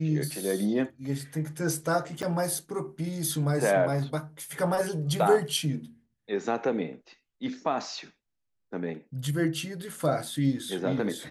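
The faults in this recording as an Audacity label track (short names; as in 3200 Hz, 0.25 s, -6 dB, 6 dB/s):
2.220000	2.230000	gap 8 ms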